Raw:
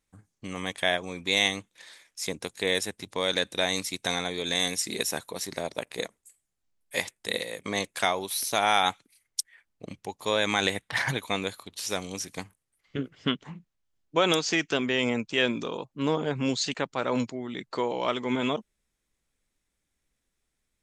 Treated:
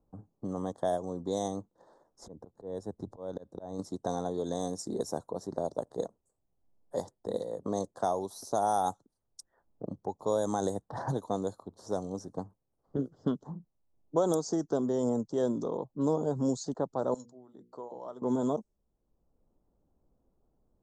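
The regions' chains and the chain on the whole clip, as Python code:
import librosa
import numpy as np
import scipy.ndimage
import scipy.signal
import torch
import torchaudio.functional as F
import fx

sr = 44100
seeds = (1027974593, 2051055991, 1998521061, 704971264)

y = fx.chain(x, sr, fx.auto_swell(attack_ms=498.0),
    fx.low_shelf(hz=95.0, db=11.5), at=(2.21, 3.79))
y = fx.chain(y, sr, fx.pre_emphasis(coefficient=0.9),
    fx.hum_notches(base_hz=60, count=8), at=(17.14, 18.22))
y = scipy.signal.sosfilt(scipy.signal.cheby1(2, 1.0, [760.0, 7200.0], 'bandstop', fs=sr, output='sos'), y)
y = fx.env_lowpass(y, sr, base_hz=1300.0, full_db=-22.5)
y = fx.band_squash(y, sr, depth_pct=40)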